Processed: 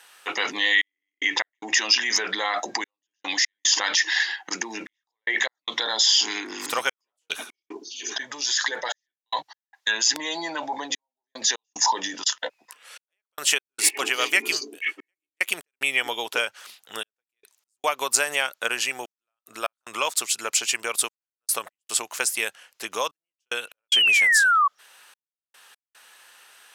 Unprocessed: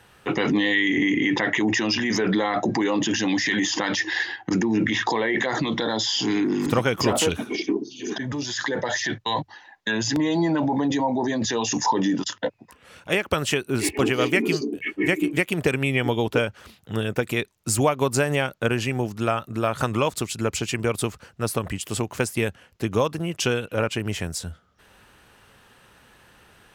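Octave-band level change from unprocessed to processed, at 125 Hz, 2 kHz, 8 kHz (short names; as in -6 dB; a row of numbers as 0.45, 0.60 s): under -30 dB, +2.5 dB, +6.0 dB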